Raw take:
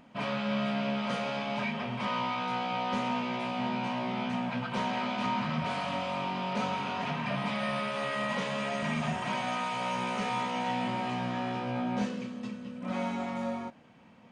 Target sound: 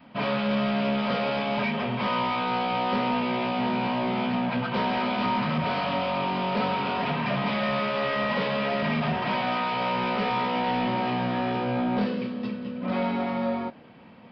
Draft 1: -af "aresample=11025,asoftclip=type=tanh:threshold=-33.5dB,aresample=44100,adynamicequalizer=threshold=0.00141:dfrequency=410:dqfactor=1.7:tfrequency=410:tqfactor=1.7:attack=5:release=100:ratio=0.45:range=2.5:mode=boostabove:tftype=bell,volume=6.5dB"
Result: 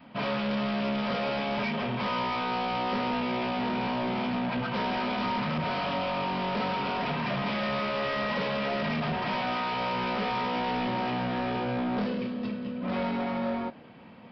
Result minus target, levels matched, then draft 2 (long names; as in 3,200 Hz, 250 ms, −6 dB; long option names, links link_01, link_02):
soft clipping: distortion +8 dB
-af "aresample=11025,asoftclip=type=tanh:threshold=-26dB,aresample=44100,adynamicequalizer=threshold=0.00141:dfrequency=410:dqfactor=1.7:tfrequency=410:tqfactor=1.7:attack=5:release=100:ratio=0.45:range=2.5:mode=boostabove:tftype=bell,volume=6.5dB"